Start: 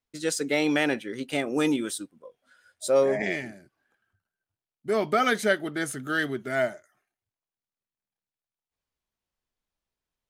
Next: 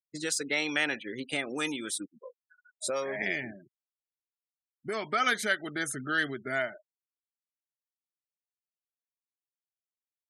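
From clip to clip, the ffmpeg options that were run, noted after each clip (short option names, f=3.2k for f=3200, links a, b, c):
-filter_complex "[0:a]afftfilt=real='re*gte(hypot(re,im),0.00708)':imag='im*gte(hypot(re,im),0.00708)':win_size=1024:overlap=0.75,acrossover=split=1100[a][b];[a]acompressor=threshold=-34dB:ratio=6[c];[c][b]amix=inputs=2:normalize=0"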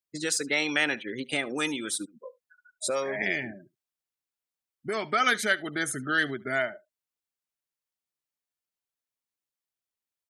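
-af "aecho=1:1:73:0.0708,volume=3dB"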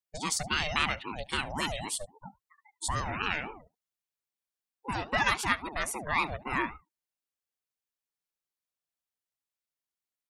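-af "aeval=exprs='val(0)*sin(2*PI*480*n/s+480*0.4/3.7*sin(2*PI*3.7*n/s))':c=same"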